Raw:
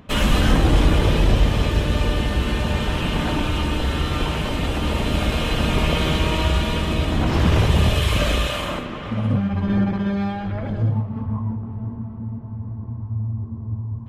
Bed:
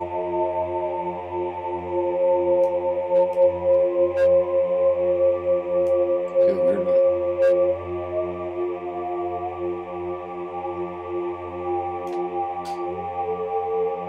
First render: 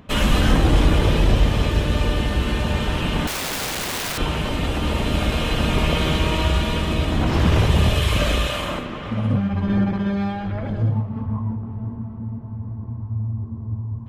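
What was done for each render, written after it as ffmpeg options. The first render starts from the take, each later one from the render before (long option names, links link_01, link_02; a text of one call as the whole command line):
ffmpeg -i in.wav -filter_complex "[0:a]asettb=1/sr,asplit=3[link_01][link_02][link_03];[link_01]atrim=end=3.274[link_04];[link_02]atrim=start=3.27:end=4.18,asetpts=PTS-STARTPTS,afade=type=in:duration=0.004:curve=qsin,afade=type=out:start_time=0.906:duration=0.004:curve=qsin,aeval=exprs='(mod(11.9*val(0)+1,2)-1)/11.9':channel_layout=same[link_05];[link_03]atrim=start=4.176[link_06];[link_04][link_05]acrossfade=duration=0.004:curve1=hsin:curve2=qsin[link_07];[link_07][link_06]acrossfade=duration=0.004:curve1=qsin:curve2=hsin" out.wav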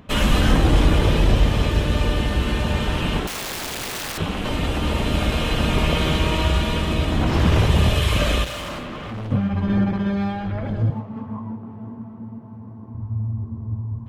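ffmpeg -i in.wav -filter_complex "[0:a]asettb=1/sr,asplit=3[link_01][link_02][link_03];[link_01]atrim=end=3.194[link_04];[link_02]atrim=start=3.19:end=4.45,asetpts=PTS-STARTPTS,afade=type=in:duration=0.004:curve=qsin,afade=type=out:start_time=1.256:duration=0.004:curve=qsin,aeval=exprs='val(0)*sin(2*PI*130*n/s)':channel_layout=same[link_05];[link_03]atrim=start=4.446[link_06];[link_04][link_05]acrossfade=duration=0.004:curve1=hsin:curve2=qsin[link_07];[link_07][link_06]acrossfade=duration=0.004:curve1=qsin:curve2=hsin,asettb=1/sr,asplit=3[link_08][link_09][link_10];[link_08]atrim=end=8.444[link_11];[link_09]atrim=start=8.44:end=9.32,asetpts=PTS-STARTPTS,afade=type=in:duration=0.004:curve=qsin,afade=type=out:start_time=0.876:duration=0.004:curve=qsin,asoftclip=type=hard:threshold=-28dB[link_12];[link_10]atrim=start=9.316[link_13];[link_11][link_12]acrossfade=duration=0.004:curve1=hsin:curve2=qsin[link_14];[link_14][link_13]acrossfade=duration=0.004:curve1=qsin:curve2=hsin,asettb=1/sr,asplit=3[link_15][link_16][link_17];[link_15]atrim=end=10.904[link_18];[link_16]atrim=start=10.9:end=12.95,asetpts=PTS-STARTPTS,afade=type=in:duration=0.004:curve=qsin,afade=type=out:start_time=2.046:duration=0.004:curve=qsin,highpass=190[link_19];[link_17]atrim=start=12.946[link_20];[link_18][link_19]acrossfade=duration=0.004:curve1=hsin:curve2=qsin[link_21];[link_21][link_20]acrossfade=duration=0.004:curve1=qsin:curve2=hsin" out.wav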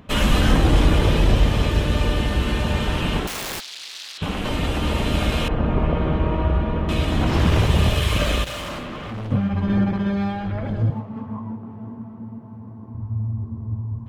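ffmpeg -i in.wav -filter_complex "[0:a]asplit=3[link_01][link_02][link_03];[link_01]afade=type=out:start_time=3.59:duration=0.02[link_04];[link_02]bandpass=frequency=4100:width_type=q:width=1.9,afade=type=in:start_time=3.59:duration=0.02,afade=type=out:start_time=4.21:duration=0.02[link_05];[link_03]afade=type=in:start_time=4.21:duration=0.02[link_06];[link_04][link_05][link_06]amix=inputs=3:normalize=0,asettb=1/sr,asplit=3[link_07][link_08][link_09];[link_07]atrim=end=5.484[link_10];[link_08]atrim=start=5.48:end=6.89,asetpts=PTS-STARTPTS,afade=type=in:duration=0.004:curve=qsin,afade=type=out:start_time=1.406:duration=0.004:curve=qsin,lowpass=1200[link_11];[link_09]atrim=start=6.886[link_12];[link_10][link_11]acrossfade=duration=0.004:curve1=hsin:curve2=qsin[link_13];[link_13][link_12]acrossfade=duration=0.004:curve1=qsin:curve2=hsin,asettb=1/sr,asplit=3[link_14][link_15][link_16];[link_14]atrim=end=7.444[link_17];[link_15]atrim=start=7.44:end=8.47,asetpts=PTS-STARTPTS,afade=type=in:duration=0.004:curve=qsin,afade=type=out:start_time=1.026:duration=0.004:curve=qsin,aeval=exprs='sgn(val(0))*max(abs(val(0))-0.0168,0)':channel_layout=same[link_18];[link_16]atrim=start=8.466[link_19];[link_17][link_18]acrossfade=duration=0.004:curve1=hsin:curve2=qsin[link_20];[link_20][link_19]acrossfade=duration=0.004:curve1=qsin:curve2=hsin" out.wav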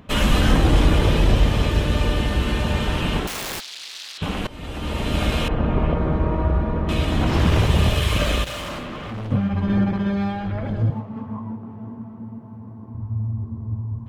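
ffmpeg -i in.wav -filter_complex "[0:a]asettb=1/sr,asplit=3[link_01][link_02][link_03];[link_01]atrim=end=5.944[link_04];[link_02]atrim=start=5.94:end=6.87,asetpts=PTS-STARTPTS,afade=type=in:duration=0.004:curve=qsin,afade=type=out:start_time=0.926:duration=0.004:curve=qsin,equalizer=frequency=3000:width=1.8:gain=-9[link_05];[link_03]atrim=start=6.866[link_06];[link_04][link_05]acrossfade=duration=0.004:curve1=hsin:curve2=qsin[link_07];[link_07][link_06]acrossfade=duration=0.004:curve1=qsin:curve2=hsin,asplit=2[link_08][link_09];[link_08]atrim=end=4.47,asetpts=PTS-STARTPTS,afade=type=out:start_time=4.466:duration=0.004:curve=hsin:silence=0.105925[link_10];[link_09]atrim=start=4.47,asetpts=PTS-STARTPTS,afade=type=in:duration=0.77:silence=0.105925[link_11];[link_10][link_11]concat=n=2:v=0:a=1" out.wav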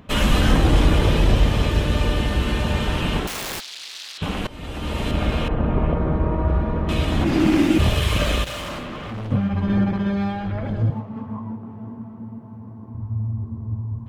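ffmpeg -i in.wav -filter_complex "[0:a]asettb=1/sr,asplit=3[link_01][link_02][link_03];[link_01]atrim=end=5.114[link_04];[link_02]atrim=start=5.11:end=6.48,asetpts=PTS-STARTPTS,afade=type=in:duration=0.004:curve=qsin,afade=type=out:start_time=1.366:duration=0.004:curve=qsin,highshelf=frequency=3600:gain=-10.5[link_05];[link_03]atrim=start=6.476[link_06];[link_04][link_05]acrossfade=duration=0.004:curve1=hsin:curve2=qsin[link_07];[link_07][link_06]acrossfade=duration=0.004:curve1=qsin:curve2=hsin,asplit=3[link_08][link_09][link_10];[link_08]afade=type=out:start_time=7.23:duration=0.02[link_11];[link_09]afreqshift=-390,afade=type=in:start_time=7.23:duration=0.02,afade=type=out:start_time=7.78:duration=0.02[link_12];[link_10]afade=type=in:start_time=7.78:duration=0.02[link_13];[link_11][link_12][link_13]amix=inputs=3:normalize=0" out.wav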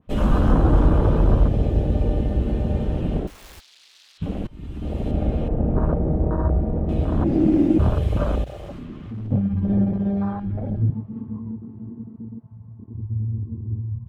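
ffmpeg -i in.wav -af "afwtdn=0.0708,adynamicequalizer=threshold=0.00631:dfrequency=1900:dqfactor=0.7:tfrequency=1900:tqfactor=0.7:attack=5:release=100:ratio=0.375:range=2:mode=cutabove:tftype=highshelf" out.wav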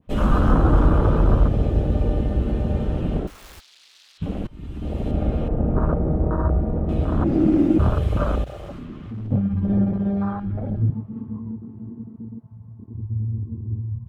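ffmpeg -i in.wav -af "adynamicequalizer=threshold=0.00355:dfrequency=1300:dqfactor=3.4:tfrequency=1300:tqfactor=3.4:attack=5:release=100:ratio=0.375:range=3.5:mode=boostabove:tftype=bell" out.wav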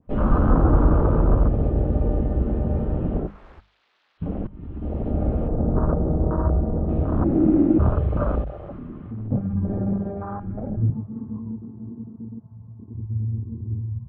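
ffmpeg -i in.wav -af "lowpass=1300,bandreject=frequency=50:width_type=h:width=6,bandreject=frequency=100:width_type=h:width=6,bandreject=frequency=150:width_type=h:width=6,bandreject=frequency=200:width_type=h:width=6" out.wav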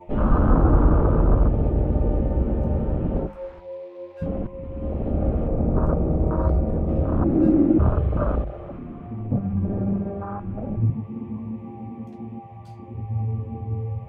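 ffmpeg -i in.wav -i bed.wav -filter_complex "[1:a]volume=-17.5dB[link_01];[0:a][link_01]amix=inputs=2:normalize=0" out.wav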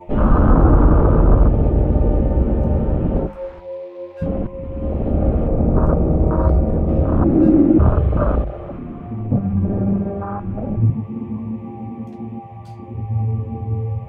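ffmpeg -i in.wav -af "volume=5.5dB,alimiter=limit=-3dB:level=0:latency=1" out.wav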